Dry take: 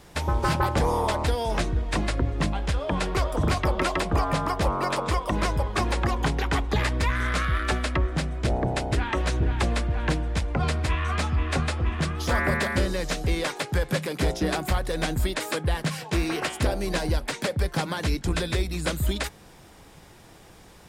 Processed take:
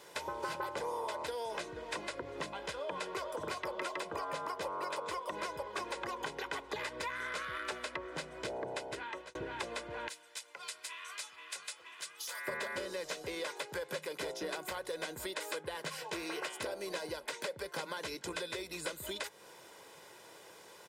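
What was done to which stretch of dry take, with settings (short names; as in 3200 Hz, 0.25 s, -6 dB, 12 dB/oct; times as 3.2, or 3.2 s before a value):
8.75–9.35 fade out
10.08–12.48 differentiator
whole clip: HPF 340 Hz 12 dB/oct; comb 2 ms, depth 48%; compressor 3:1, threshold -36 dBFS; gain -3 dB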